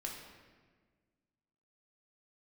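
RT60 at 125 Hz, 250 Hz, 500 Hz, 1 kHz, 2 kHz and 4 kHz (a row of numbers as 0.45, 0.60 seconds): 2.0, 2.0, 1.7, 1.4, 1.4, 1.1 seconds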